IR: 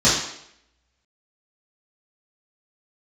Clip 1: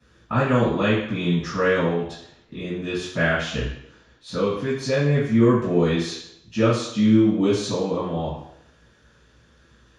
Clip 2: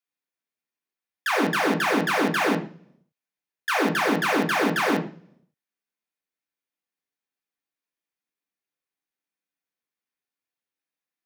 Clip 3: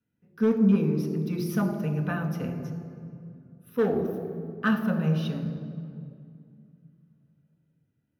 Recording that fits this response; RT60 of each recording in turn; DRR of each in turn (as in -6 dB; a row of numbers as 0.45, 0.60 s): 1; 0.75, 0.45, 2.3 s; -11.5, 0.5, 3.0 dB